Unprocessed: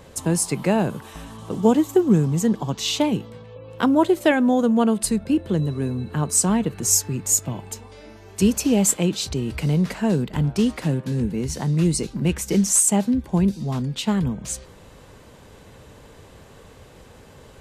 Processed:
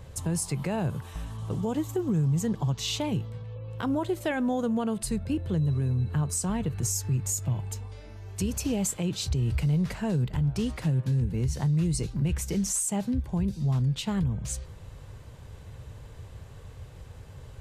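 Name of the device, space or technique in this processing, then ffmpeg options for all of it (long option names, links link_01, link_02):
car stereo with a boomy subwoofer: -af "lowshelf=frequency=160:width_type=q:width=1.5:gain=10.5,alimiter=limit=-13.5dB:level=0:latency=1:release=79,volume=-6dB"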